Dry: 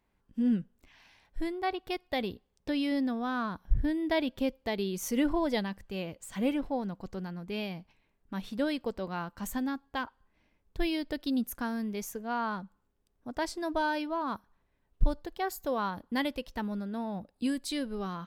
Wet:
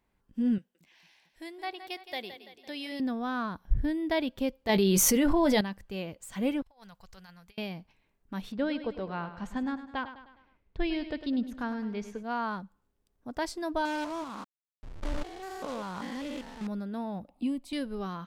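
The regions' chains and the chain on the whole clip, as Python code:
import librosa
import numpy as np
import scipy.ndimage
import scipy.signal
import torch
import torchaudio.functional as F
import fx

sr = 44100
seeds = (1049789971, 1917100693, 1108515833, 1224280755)

y = fx.chain(x, sr, fx.highpass(hz=1000.0, slope=6),
    fx.peak_eq(hz=1300.0, db=-7.0, octaves=0.55),
    fx.echo_split(split_hz=320.0, low_ms=224, high_ms=168, feedback_pct=52, wet_db=-11.0), at=(0.58, 3.0))
y = fx.chain(y, sr, fx.doubler(ms=15.0, db=-11.0),
    fx.env_flatten(amount_pct=100), at=(4.69, 5.61))
y = fx.chain(y, sr, fx.tone_stack(knobs='10-0-10'),
    fx.over_compress(threshold_db=-53.0, ratio=-0.5), at=(6.62, 7.58))
y = fx.chain(y, sr, fx.lowpass(hz=3500.0, slope=12),
    fx.echo_feedback(ms=103, feedback_pct=49, wet_db=-12.0), at=(8.52, 12.23))
y = fx.chain(y, sr, fx.spec_steps(hold_ms=200),
    fx.quant_companded(bits=4),
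    fx.air_absorb(metres=59.0), at=(13.85, 16.67))
y = fx.chain(y, sr, fx.high_shelf_res(hz=3300.0, db=-10.5, q=1.5),
    fx.fixed_phaser(hz=440.0, stages=6),
    fx.band_squash(depth_pct=40), at=(17.28, 17.73))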